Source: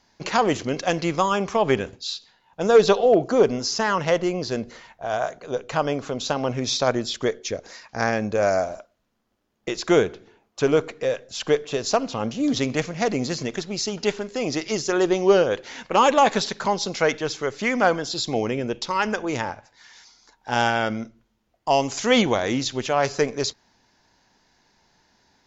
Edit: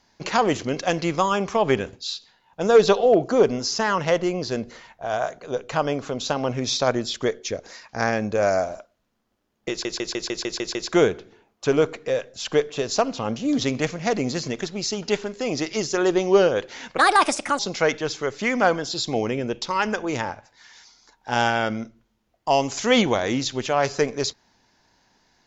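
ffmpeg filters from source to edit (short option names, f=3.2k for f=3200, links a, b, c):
-filter_complex "[0:a]asplit=10[a][b][c][d][e][f][g][h][i][j];[a]atrim=end=9.852[k];[b]atrim=start=9.698:end=9.852[l];[c]atrim=start=9.698:end=9.852[m];[d]atrim=start=9.698:end=9.852[n];[e]atrim=start=9.698:end=9.852[o];[f]atrim=start=9.698:end=9.852[p];[g]atrim=start=9.698:end=9.852[q];[h]atrim=start=9.698:end=15.934[r];[i]atrim=start=15.93:end=16.79,asetpts=PTS-STARTPTS,asetrate=62181,aresample=44100[s];[j]atrim=start=16.786[t];[k][l]acrossfade=d=0.004:c1=hsin:c2=hsin[u];[u][m]acrossfade=d=0.004:c1=hsin:c2=hsin[v];[v][n]acrossfade=d=0.004:c1=hsin:c2=hsin[w];[w][o]acrossfade=d=0.004:c1=hsin:c2=hsin[x];[x][p]acrossfade=d=0.004:c1=hsin:c2=hsin[y];[y][q]acrossfade=d=0.004:c1=hsin:c2=hsin[z];[z][r]acrossfade=d=0.004:c1=hsin:c2=hsin[aa];[aa][s]acrossfade=d=0.004:c1=hsin:c2=hsin[ab];[ab][t]acrossfade=d=0.004:c1=hsin:c2=hsin"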